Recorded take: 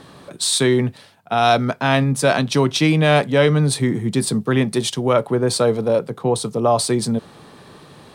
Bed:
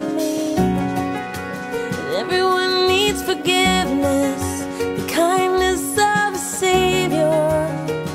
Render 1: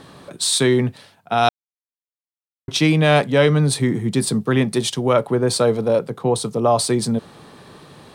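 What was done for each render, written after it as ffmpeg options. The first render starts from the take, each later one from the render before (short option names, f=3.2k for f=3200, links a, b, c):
-filter_complex "[0:a]asplit=3[a][b][c];[a]atrim=end=1.49,asetpts=PTS-STARTPTS,afade=t=out:st=1.486:d=0.004:c=hsin[d];[b]atrim=start=1.49:end=2.68,asetpts=PTS-STARTPTS,volume=0[e];[c]atrim=start=2.68,asetpts=PTS-STARTPTS,afade=t=in:d=0.004:c=hsin[f];[d][e][f]concat=n=3:v=0:a=1"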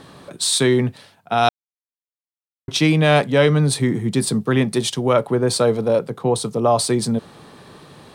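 -af anull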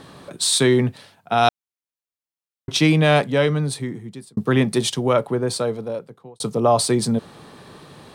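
-filter_complex "[0:a]asplit=3[a][b][c];[a]atrim=end=4.37,asetpts=PTS-STARTPTS,afade=t=out:st=2.94:d=1.43[d];[b]atrim=start=4.37:end=6.4,asetpts=PTS-STARTPTS,afade=t=in:d=0.004:c=hsin,afade=t=out:st=0.51:d=1.52[e];[c]atrim=start=6.4,asetpts=PTS-STARTPTS,afade=t=in:d=0.004:c=hsin[f];[d][e][f]concat=n=3:v=0:a=1"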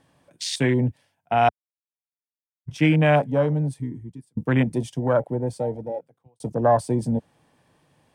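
-af "afwtdn=0.0708,equalizer=f=200:t=o:w=0.33:g=-7,equalizer=f=400:t=o:w=0.33:g=-10,equalizer=f=1.25k:t=o:w=0.33:g=-9,equalizer=f=4k:t=o:w=0.33:g=-11"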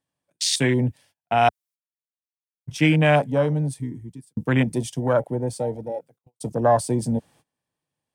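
-af "agate=range=-24dB:threshold=-51dB:ratio=16:detection=peak,highshelf=f=3.5k:g=9.5"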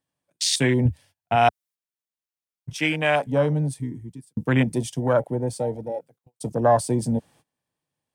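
-filter_complex "[0:a]asettb=1/sr,asplit=3[a][b][c];[a]atrim=end=0.854[d];[b]atrim=start=0.85:end=1.36,asetpts=PTS-STARTPTS,afade=t=in:d=0.004:c=qsin,afade=t=out:st=0.506:d=0.004:c=qsin,equalizer=f=79:w=1.5:g=14[e];[c]atrim=start=1.356[f];[d][e]acrossfade=d=0.004:c1=hsin:c2=qsin[g];[g][f]acrossfade=d=0.004:c1=qsin:c2=hsin,asettb=1/sr,asplit=3[h][i][j];[h]atrim=end=2.734[k];[i]atrim=start=2.73:end=3.27,asetpts=PTS-STARTPTS,afade=t=in:d=0.004:c=qsin,afade=t=out:st=0.536:d=0.004:c=qsin,highpass=f=630:p=1[l];[j]atrim=start=3.266[m];[k][l]acrossfade=d=0.004:c1=hsin:c2=qsin[n];[n][m]acrossfade=d=0.004:c1=qsin:c2=hsin"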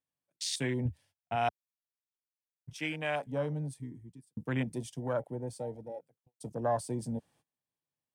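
-af "volume=-12.5dB"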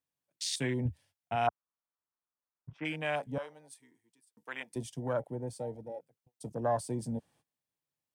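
-filter_complex "[0:a]asplit=3[a][b][c];[a]afade=t=out:st=1.46:d=0.02[d];[b]lowpass=f=1.2k:t=q:w=2.4,afade=t=in:st=1.46:d=0.02,afade=t=out:st=2.84:d=0.02[e];[c]afade=t=in:st=2.84:d=0.02[f];[d][e][f]amix=inputs=3:normalize=0,asettb=1/sr,asplit=3[g][h][i];[g]atrim=end=3.384[j];[h]atrim=start=3.38:end=4.76,asetpts=PTS-STARTPTS,afade=t=in:d=0.004:c=qsin,afade=t=out:st=1.376:d=0.004:c=qsin,highpass=850[k];[i]atrim=start=4.756[l];[j][k]acrossfade=d=0.004:c1=hsin:c2=qsin[m];[m][l]acrossfade=d=0.004:c1=qsin:c2=hsin"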